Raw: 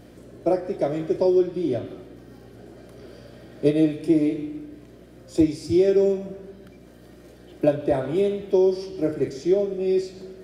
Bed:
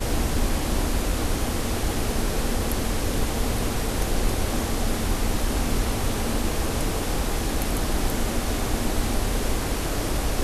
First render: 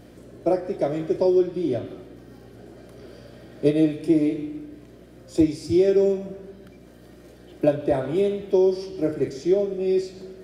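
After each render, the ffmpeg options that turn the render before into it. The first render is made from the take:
-af anull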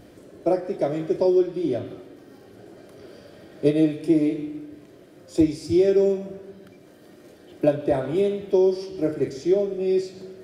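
-af "bandreject=f=60:t=h:w=4,bandreject=f=120:t=h:w=4,bandreject=f=180:t=h:w=4,bandreject=f=240:t=h:w=4"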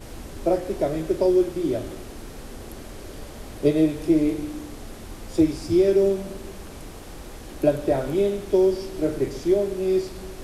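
-filter_complex "[1:a]volume=0.188[s0];[0:a][s0]amix=inputs=2:normalize=0"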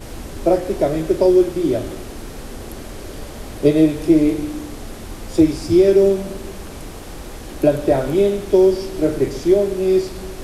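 -af "volume=2,alimiter=limit=0.708:level=0:latency=1"

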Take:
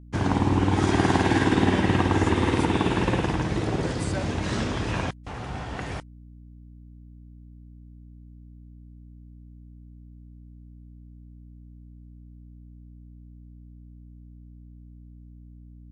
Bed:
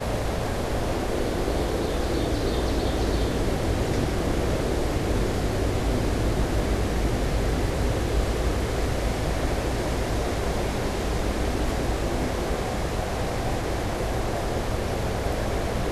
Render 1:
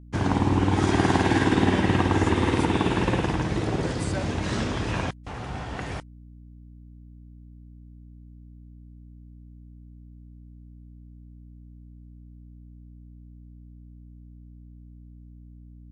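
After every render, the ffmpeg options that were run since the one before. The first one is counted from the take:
-af anull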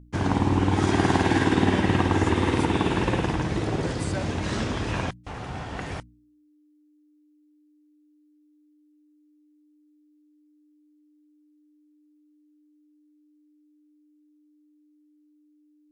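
-af "bandreject=f=60:t=h:w=4,bandreject=f=120:t=h:w=4,bandreject=f=180:t=h:w=4,bandreject=f=240:t=h:w=4"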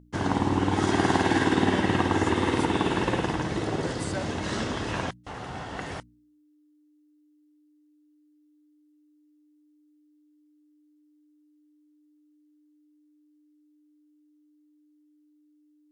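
-af "lowshelf=f=130:g=-9,bandreject=f=2400:w=12"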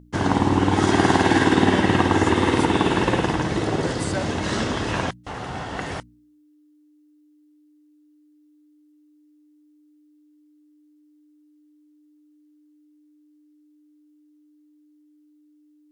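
-af "volume=1.88,alimiter=limit=0.708:level=0:latency=1"

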